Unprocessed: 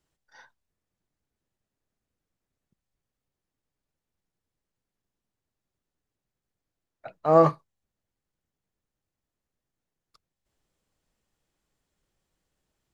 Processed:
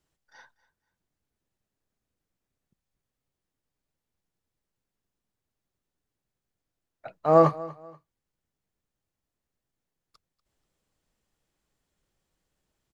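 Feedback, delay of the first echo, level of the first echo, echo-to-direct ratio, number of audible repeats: 30%, 241 ms, −19.5 dB, −19.0 dB, 2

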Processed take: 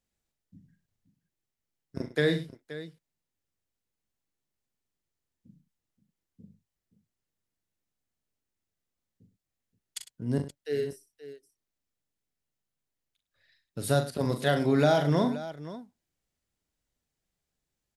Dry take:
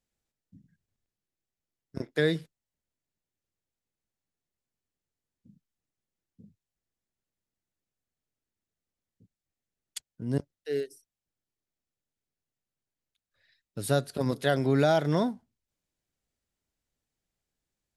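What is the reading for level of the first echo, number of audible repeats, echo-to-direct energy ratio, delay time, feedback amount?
−7.0 dB, 3, −6.0 dB, 41 ms, repeats not evenly spaced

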